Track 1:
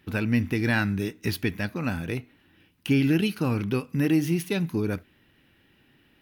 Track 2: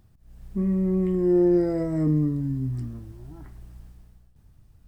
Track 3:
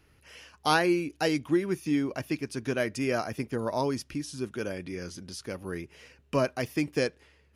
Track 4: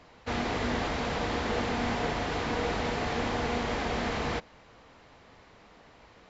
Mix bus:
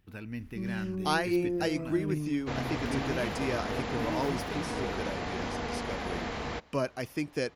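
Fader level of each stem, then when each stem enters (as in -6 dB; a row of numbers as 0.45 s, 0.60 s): -15.5 dB, -12.0 dB, -4.5 dB, -4.5 dB; 0.00 s, 0.00 s, 0.40 s, 2.20 s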